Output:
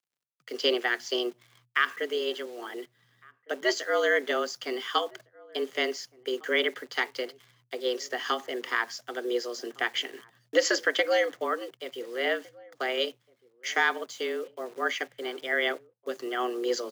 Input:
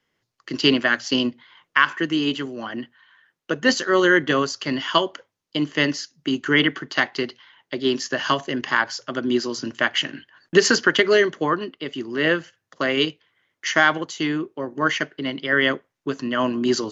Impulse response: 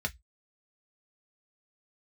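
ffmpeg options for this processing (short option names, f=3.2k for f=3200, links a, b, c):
-filter_complex "[0:a]acrusher=bits=8:dc=4:mix=0:aa=0.000001,afreqshift=120,asplit=2[a][b];[b]adelay=1458,volume=-24dB,highshelf=f=4k:g=-32.8[c];[a][c]amix=inputs=2:normalize=0,volume=-8dB"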